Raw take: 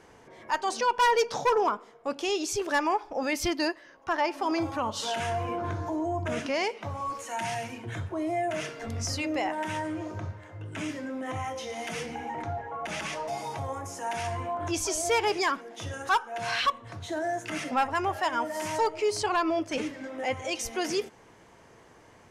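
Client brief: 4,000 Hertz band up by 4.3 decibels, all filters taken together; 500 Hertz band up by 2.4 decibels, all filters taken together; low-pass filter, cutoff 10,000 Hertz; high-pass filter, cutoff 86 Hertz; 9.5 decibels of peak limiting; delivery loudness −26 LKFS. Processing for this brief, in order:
high-pass filter 86 Hz
low-pass filter 10,000 Hz
parametric band 500 Hz +3 dB
parametric band 4,000 Hz +6 dB
level +5.5 dB
brickwall limiter −17 dBFS

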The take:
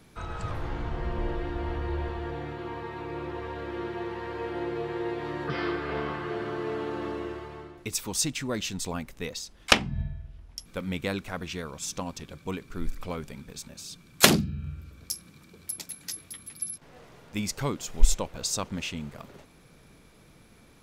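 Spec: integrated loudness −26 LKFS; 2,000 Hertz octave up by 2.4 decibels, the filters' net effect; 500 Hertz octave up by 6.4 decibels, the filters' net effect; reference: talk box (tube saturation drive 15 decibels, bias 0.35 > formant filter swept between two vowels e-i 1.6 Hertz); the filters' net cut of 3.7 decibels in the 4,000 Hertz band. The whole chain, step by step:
parametric band 500 Hz +8 dB
parametric band 2,000 Hz +4.5 dB
parametric band 4,000 Hz −7 dB
tube saturation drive 15 dB, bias 0.35
formant filter swept between two vowels e-i 1.6 Hz
level +14.5 dB

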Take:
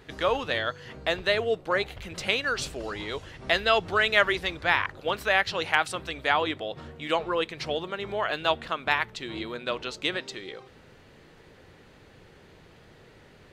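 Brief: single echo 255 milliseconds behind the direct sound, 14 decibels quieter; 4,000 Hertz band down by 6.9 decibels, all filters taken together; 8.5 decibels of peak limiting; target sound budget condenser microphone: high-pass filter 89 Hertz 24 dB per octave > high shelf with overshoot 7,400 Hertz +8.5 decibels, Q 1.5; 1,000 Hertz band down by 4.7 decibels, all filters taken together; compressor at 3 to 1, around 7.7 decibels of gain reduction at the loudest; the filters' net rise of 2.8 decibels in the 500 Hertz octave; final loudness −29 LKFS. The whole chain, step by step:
parametric band 500 Hz +6 dB
parametric band 1,000 Hz −8.5 dB
parametric band 4,000 Hz −7 dB
downward compressor 3 to 1, threshold −29 dBFS
brickwall limiter −22.5 dBFS
high-pass filter 89 Hz 24 dB per octave
high shelf with overshoot 7,400 Hz +8.5 dB, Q 1.5
single-tap delay 255 ms −14 dB
level +5.5 dB

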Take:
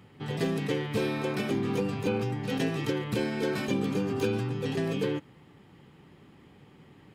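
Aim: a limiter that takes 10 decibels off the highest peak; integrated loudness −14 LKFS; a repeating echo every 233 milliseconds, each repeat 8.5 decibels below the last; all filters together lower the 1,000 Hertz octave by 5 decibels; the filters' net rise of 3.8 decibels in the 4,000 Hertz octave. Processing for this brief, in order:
parametric band 1,000 Hz −7 dB
parametric band 4,000 Hz +5.5 dB
brickwall limiter −25.5 dBFS
repeating echo 233 ms, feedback 38%, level −8.5 dB
level +19.5 dB

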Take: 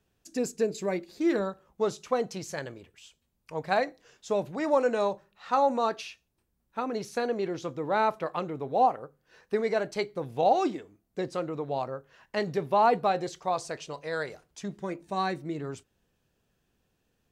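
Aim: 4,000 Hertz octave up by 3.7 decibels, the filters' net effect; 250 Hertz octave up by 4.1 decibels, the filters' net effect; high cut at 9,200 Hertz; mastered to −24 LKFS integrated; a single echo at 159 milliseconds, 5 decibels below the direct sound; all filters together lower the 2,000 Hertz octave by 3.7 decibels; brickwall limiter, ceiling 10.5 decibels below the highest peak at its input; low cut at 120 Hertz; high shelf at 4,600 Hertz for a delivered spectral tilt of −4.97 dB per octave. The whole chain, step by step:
high-pass filter 120 Hz
low-pass filter 9,200 Hz
parametric band 250 Hz +6 dB
parametric band 2,000 Hz −6 dB
parametric band 4,000 Hz +8 dB
high-shelf EQ 4,600 Hz −5 dB
brickwall limiter −21.5 dBFS
single-tap delay 159 ms −5 dB
level +8 dB

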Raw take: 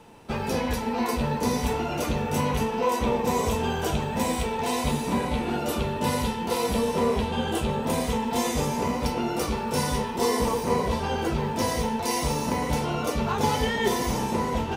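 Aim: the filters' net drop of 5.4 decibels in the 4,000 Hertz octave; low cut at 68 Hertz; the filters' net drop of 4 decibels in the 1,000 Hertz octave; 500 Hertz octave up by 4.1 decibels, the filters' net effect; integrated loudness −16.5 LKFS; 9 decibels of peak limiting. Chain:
high-pass filter 68 Hz
parametric band 500 Hz +6 dB
parametric band 1,000 Hz −6.5 dB
parametric band 4,000 Hz −7 dB
level +11.5 dB
brickwall limiter −7.5 dBFS

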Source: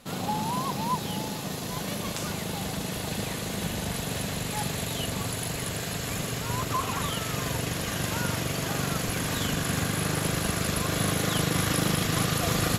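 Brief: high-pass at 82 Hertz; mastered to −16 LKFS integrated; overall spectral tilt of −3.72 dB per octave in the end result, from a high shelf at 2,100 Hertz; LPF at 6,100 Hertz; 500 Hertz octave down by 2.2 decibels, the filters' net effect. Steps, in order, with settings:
high-pass filter 82 Hz
low-pass filter 6,100 Hz
parametric band 500 Hz −3 dB
high-shelf EQ 2,100 Hz +3.5 dB
level +13 dB

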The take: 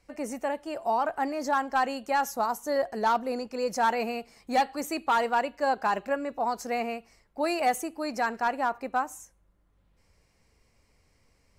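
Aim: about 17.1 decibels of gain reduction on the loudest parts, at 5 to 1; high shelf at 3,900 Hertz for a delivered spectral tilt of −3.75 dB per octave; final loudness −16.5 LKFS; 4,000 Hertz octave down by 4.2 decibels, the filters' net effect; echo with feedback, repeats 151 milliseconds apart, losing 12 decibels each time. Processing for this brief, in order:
high-shelf EQ 3,900 Hz −3 dB
parametric band 4,000 Hz −3.5 dB
downward compressor 5 to 1, threshold −41 dBFS
repeating echo 151 ms, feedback 25%, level −12 dB
level +27 dB

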